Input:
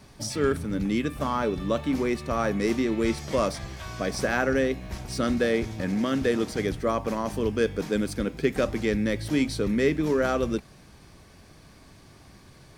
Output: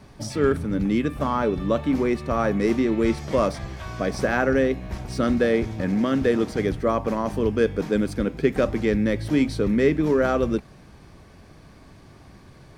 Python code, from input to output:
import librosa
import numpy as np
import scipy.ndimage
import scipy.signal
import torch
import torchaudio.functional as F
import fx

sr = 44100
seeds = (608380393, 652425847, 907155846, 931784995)

y = fx.high_shelf(x, sr, hz=2900.0, db=-9.0)
y = y * 10.0 ** (4.0 / 20.0)